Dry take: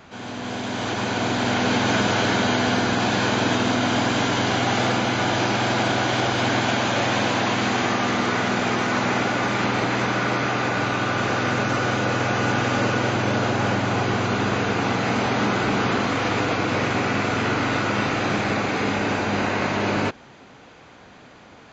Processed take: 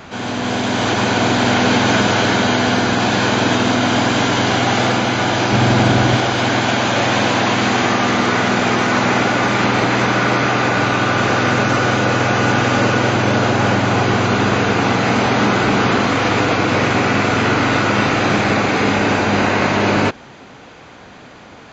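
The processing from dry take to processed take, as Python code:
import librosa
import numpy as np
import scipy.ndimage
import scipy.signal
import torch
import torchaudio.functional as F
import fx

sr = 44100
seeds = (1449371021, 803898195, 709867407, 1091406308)

y = fx.low_shelf(x, sr, hz=230.0, db=11.5, at=(5.52, 6.18))
y = fx.rider(y, sr, range_db=4, speed_s=2.0)
y = y * librosa.db_to_amplitude(6.5)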